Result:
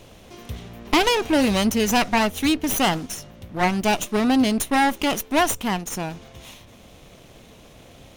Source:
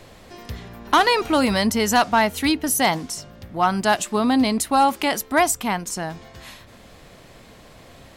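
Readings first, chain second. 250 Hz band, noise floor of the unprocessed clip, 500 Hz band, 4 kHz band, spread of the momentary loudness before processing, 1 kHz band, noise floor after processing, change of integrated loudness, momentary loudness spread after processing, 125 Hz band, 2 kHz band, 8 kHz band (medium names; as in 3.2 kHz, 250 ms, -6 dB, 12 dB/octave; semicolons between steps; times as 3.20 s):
+1.0 dB, -47 dBFS, -1.0 dB, 0.0 dB, 15 LU, -3.5 dB, -48 dBFS, -1.0 dB, 15 LU, +1.5 dB, -1.5 dB, -2.5 dB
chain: comb filter that takes the minimum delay 0.32 ms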